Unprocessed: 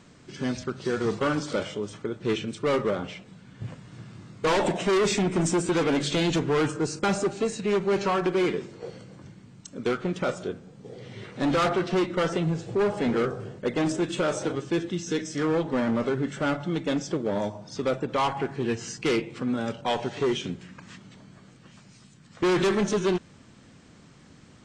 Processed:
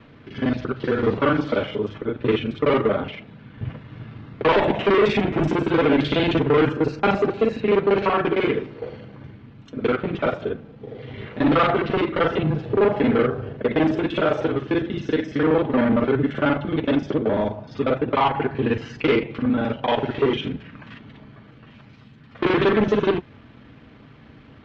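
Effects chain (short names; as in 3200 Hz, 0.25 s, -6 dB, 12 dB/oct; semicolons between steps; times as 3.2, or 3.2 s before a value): local time reversal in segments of 38 ms; LPF 3300 Hz 24 dB/oct; notch comb 180 Hz; gain +7.5 dB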